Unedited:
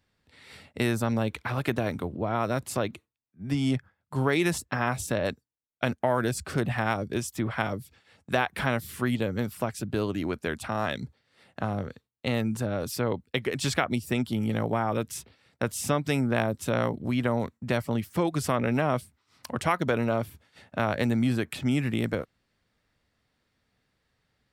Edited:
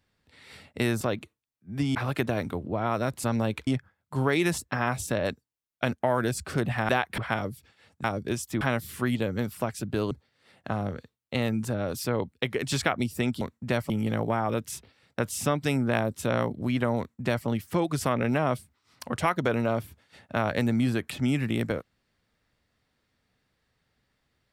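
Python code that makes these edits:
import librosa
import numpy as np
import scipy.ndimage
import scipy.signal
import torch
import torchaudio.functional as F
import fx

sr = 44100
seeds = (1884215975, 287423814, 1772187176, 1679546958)

y = fx.edit(x, sr, fx.swap(start_s=1.01, length_s=0.43, other_s=2.73, other_length_s=0.94),
    fx.swap(start_s=6.89, length_s=0.57, other_s=8.32, other_length_s=0.29),
    fx.cut(start_s=10.11, length_s=0.92),
    fx.duplicate(start_s=17.41, length_s=0.49, to_s=14.33), tone=tone)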